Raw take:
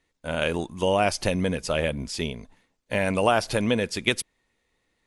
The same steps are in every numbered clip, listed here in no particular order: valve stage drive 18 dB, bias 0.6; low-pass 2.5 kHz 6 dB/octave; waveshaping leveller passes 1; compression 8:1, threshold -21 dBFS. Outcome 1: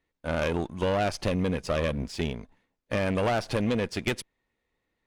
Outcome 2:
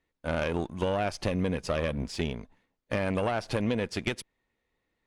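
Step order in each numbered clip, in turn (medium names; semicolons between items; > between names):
low-pass > waveshaping leveller > valve stage > compression; waveshaping leveller > compression > low-pass > valve stage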